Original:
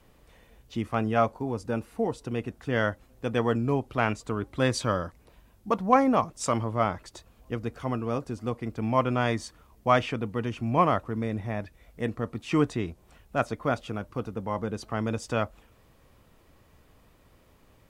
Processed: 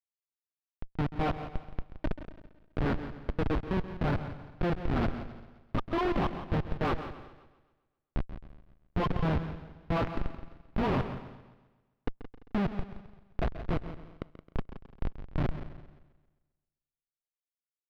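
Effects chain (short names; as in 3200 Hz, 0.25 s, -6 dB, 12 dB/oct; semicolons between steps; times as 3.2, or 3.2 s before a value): spectral delay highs late, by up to 0.458 s; low-pass opened by the level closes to 960 Hz, open at -23 dBFS; HPF 49 Hz 6 dB/oct; high shelf 4300 Hz +12 dB; crossover distortion -37 dBFS; formant-preserving pitch shift +5 st; Schmitt trigger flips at -25 dBFS; air absorption 340 m; feedback echo 0.171 s, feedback 29%, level -13 dB; warbling echo 0.132 s, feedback 49%, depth 61 cents, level -14 dB; gain +6.5 dB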